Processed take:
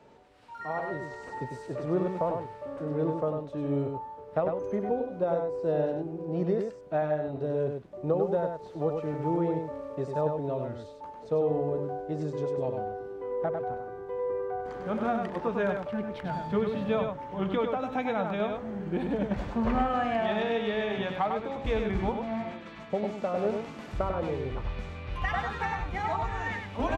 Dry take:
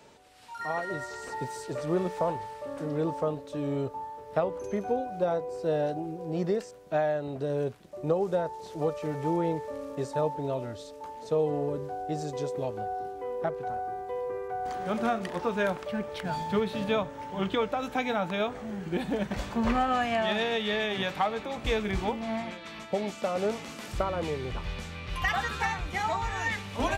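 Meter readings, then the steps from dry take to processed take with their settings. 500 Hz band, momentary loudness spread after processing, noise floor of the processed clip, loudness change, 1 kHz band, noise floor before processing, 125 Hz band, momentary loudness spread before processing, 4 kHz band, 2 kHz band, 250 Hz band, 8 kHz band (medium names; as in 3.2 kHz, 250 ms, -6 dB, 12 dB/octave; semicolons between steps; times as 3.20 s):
+0.5 dB, 8 LU, -46 dBFS, 0.0 dB, -1.5 dB, -45 dBFS, +1.5 dB, 8 LU, -7.5 dB, -3.5 dB, +1.0 dB, under -10 dB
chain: low-pass 1.3 kHz 6 dB/octave; delay 99 ms -5 dB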